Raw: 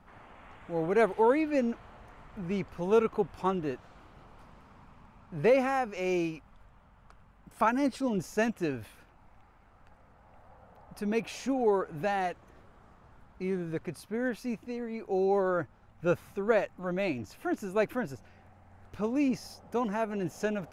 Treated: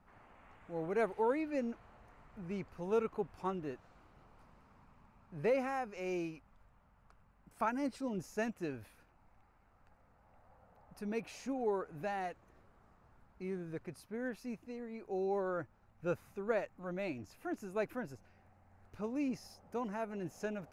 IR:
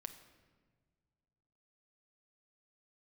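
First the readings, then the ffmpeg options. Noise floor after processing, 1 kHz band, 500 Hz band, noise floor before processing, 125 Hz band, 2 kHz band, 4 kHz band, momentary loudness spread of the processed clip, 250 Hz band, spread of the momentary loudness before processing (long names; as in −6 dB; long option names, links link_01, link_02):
−68 dBFS, −8.5 dB, −8.5 dB, −59 dBFS, −8.5 dB, −8.5 dB, −10.0 dB, 12 LU, −8.5 dB, 12 LU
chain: -af "equalizer=frequency=3300:width=4.8:gain=-5.5,volume=-8.5dB"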